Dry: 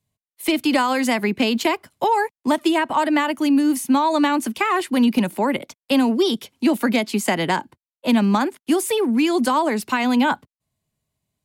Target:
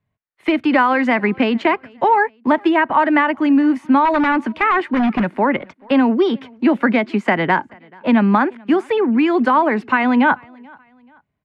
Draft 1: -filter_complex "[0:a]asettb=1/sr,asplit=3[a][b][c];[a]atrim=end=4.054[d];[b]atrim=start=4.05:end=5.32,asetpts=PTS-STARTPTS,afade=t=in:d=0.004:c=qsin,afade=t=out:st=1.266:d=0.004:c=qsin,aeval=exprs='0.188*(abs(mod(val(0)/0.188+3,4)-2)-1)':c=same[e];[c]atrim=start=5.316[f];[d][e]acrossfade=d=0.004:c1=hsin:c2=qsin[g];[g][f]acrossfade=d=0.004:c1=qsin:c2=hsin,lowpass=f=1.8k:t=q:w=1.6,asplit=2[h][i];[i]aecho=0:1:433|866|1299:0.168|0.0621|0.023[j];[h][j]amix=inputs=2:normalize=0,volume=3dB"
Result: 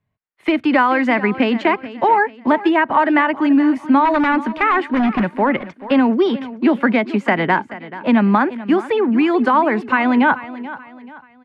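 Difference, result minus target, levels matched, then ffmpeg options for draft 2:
echo-to-direct +11.5 dB
-filter_complex "[0:a]asettb=1/sr,asplit=3[a][b][c];[a]atrim=end=4.054[d];[b]atrim=start=4.05:end=5.32,asetpts=PTS-STARTPTS,afade=t=in:d=0.004:c=qsin,afade=t=out:st=1.266:d=0.004:c=qsin,aeval=exprs='0.188*(abs(mod(val(0)/0.188+3,4)-2)-1)':c=same[e];[c]atrim=start=5.316[f];[d][e]acrossfade=d=0.004:c1=hsin:c2=qsin[g];[g][f]acrossfade=d=0.004:c1=qsin:c2=hsin,lowpass=f=1.8k:t=q:w=1.6,asplit=2[h][i];[i]aecho=0:1:433|866:0.0447|0.0165[j];[h][j]amix=inputs=2:normalize=0,volume=3dB"

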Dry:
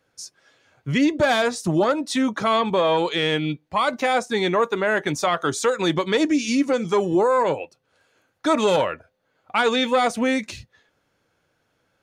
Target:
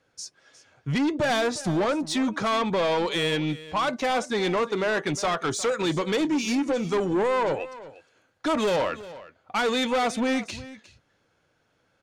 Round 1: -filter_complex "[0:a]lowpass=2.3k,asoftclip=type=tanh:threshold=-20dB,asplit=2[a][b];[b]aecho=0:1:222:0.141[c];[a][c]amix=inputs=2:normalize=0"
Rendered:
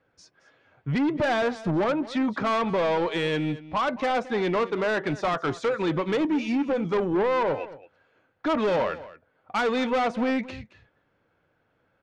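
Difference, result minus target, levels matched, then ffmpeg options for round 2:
8000 Hz band -14.0 dB; echo 0.135 s early
-filter_complex "[0:a]lowpass=9.1k,asoftclip=type=tanh:threshold=-20dB,asplit=2[a][b];[b]aecho=0:1:357:0.141[c];[a][c]amix=inputs=2:normalize=0"

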